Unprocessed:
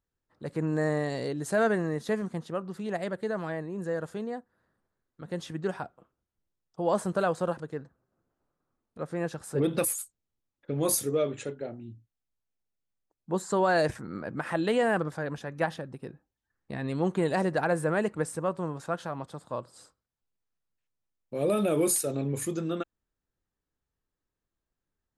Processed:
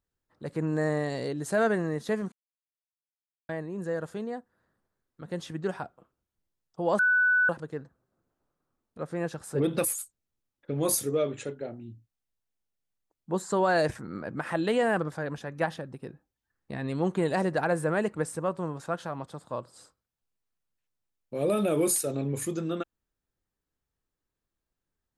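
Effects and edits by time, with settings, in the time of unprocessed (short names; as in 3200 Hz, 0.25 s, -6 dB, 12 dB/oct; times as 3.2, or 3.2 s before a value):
2.32–3.49 mute
6.99–7.49 bleep 1490 Hz -19.5 dBFS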